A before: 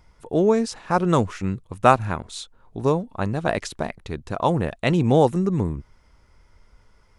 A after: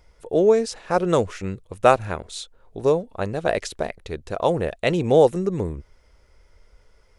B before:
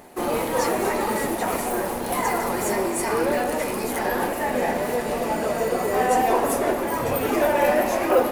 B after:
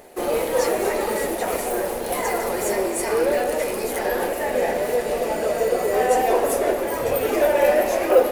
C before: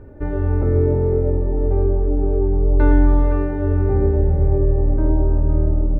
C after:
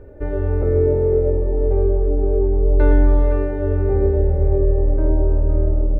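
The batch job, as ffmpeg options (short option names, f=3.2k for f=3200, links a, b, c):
-af "equalizer=f=125:t=o:w=1:g=-6,equalizer=f=250:t=o:w=1:g=-6,equalizer=f=500:t=o:w=1:g=6,equalizer=f=1k:t=o:w=1:g=-6,volume=1dB"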